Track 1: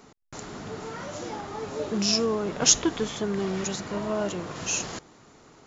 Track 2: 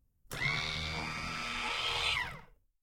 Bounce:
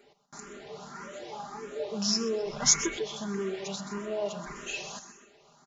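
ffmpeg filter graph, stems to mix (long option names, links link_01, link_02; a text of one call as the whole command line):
ffmpeg -i stem1.wav -i stem2.wav -filter_complex "[0:a]lowshelf=frequency=150:gain=-11,volume=-4.5dB,asplit=2[link_01][link_02];[link_02]volume=-11.5dB[link_03];[1:a]lowpass=frequency=2600:width=0.5412,lowpass=frequency=2600:width=1.3066,adelay=2200,volume=-1dB,asplit=3[link_04][link_05][link_06];[link_04]atrim=end=2.97,asetpts=PTS-STARTPTS,afade=type=out:start_time=2.966:duration=0.004:curve=hsin[link_07];[link_05]atrim=start=2.97:end=4.46,asetpts=PTS-STARTPTS,volume=0[link_08];[link_06]atrim=start=4.46,asetpts=PTS-STARTPTS,afade=type=in:duration=0.004:curve=hsin[link_09];[link_07][link_08][link_09]concat=n=3:v=0:a=1[link_10];[link_03]aecho=0:1:128|256|384|512|640|768|896:1|0.48|0.23|0.111|0.0531|0.0255|0.0122[link_11];[link_01][link_10][link_11]amix=inputs=3:normalize=0,aecho=1:1:5:0.72,asplit=2[link_12][link_13];[link_13]afreqshift=1.7[link_14];[link_12][link_14]amix=inputs=2:normalize=1" out.wav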